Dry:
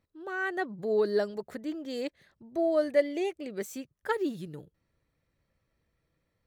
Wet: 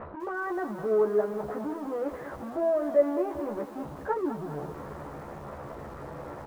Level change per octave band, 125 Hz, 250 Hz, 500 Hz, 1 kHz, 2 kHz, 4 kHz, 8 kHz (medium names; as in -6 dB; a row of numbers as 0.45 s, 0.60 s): +6.0 dB, +1.5 dB, +2.0 dB, +4.0 dB, -3.5 dB, under -10 dB, no reading